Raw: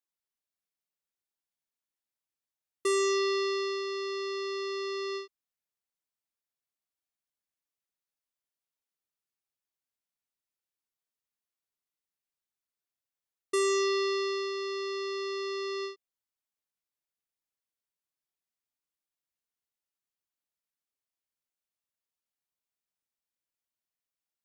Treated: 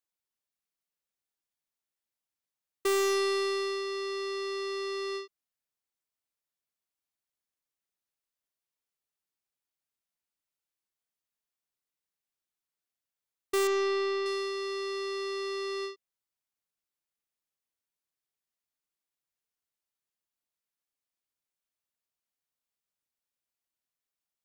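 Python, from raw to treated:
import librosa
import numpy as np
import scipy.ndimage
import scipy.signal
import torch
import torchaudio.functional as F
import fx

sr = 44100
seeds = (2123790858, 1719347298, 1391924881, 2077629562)

y = fx.tracing_dist(x, sr, depth_ms=0.041)
y = fx.air_absorb(y, sr, metres=140.0, at=(13.67, 14.26))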